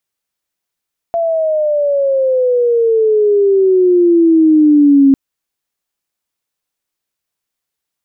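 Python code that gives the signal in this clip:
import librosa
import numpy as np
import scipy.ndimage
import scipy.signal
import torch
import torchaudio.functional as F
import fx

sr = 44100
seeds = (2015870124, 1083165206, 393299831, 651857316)

y = fx.chirp(sr, length_s=4.0, from_hz=680.0, to_hz=270.0, law='logarithmic', from_db=-12.0, to_db=-4.0)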